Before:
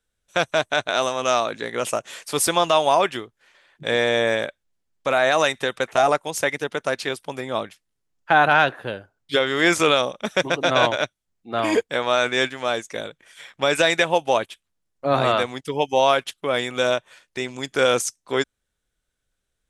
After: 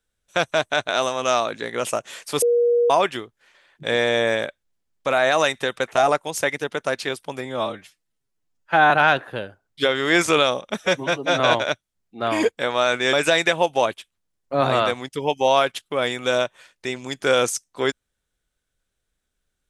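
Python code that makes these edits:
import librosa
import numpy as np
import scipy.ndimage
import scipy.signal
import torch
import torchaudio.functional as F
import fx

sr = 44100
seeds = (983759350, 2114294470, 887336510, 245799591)

y = fx.edit(x, sr, fx.bleep(start_s=2.42, length_s=0.48, hz=477.0, db=-14.5),
    fx.stretch_span(start_s=7.45, length_s=0.97, factor=1.5),
    fx.stretch_span(start_s=10.33, length_s=0.39, factor=1.5),
    fx.cut(start_s=12.45, length_s=1.2), tone=tone)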